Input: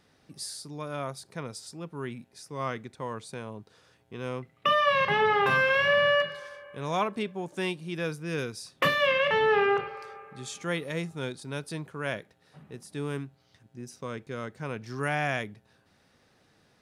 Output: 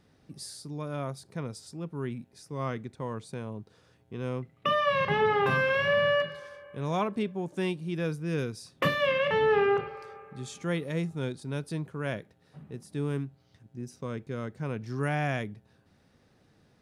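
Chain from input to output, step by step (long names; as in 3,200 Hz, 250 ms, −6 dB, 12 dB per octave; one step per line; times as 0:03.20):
low-shelf EQ 450 Hz +9.5 dB
level −4.5 dB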